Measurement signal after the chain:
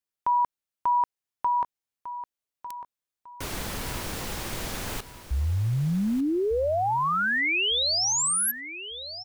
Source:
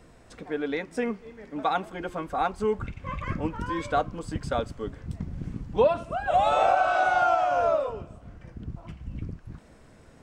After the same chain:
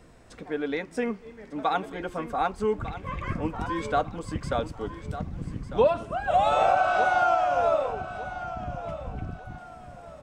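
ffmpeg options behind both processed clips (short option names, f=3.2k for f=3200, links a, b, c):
-af "aecho=1:1:1200|2400|3600:0.224|0.0694|0.0215"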